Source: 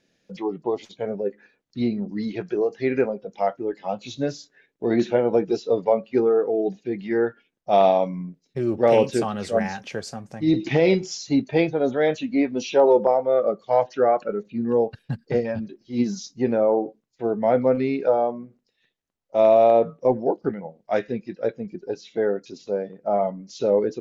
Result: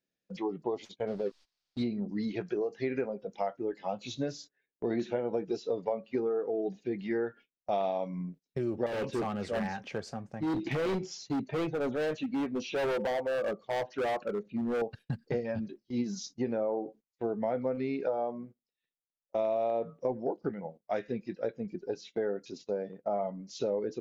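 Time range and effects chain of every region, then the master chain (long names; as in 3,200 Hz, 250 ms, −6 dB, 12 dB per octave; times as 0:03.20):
0:01.06–0:01.83: slack as between gear wheels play −38 dBFS + background noise white −65 dBFS + low-pass with resonance 4,700 Hz, resonance Q 2.9
0:08.86–0:14.82: low-pass filter 2,700 Hz 6 dB per octave + hard clipping −22 dBFS
whole clip: noise gate −43 dBFS, range −18 dB; downward compressor 4 to 1, threshold −25 dBFS; level −4 dB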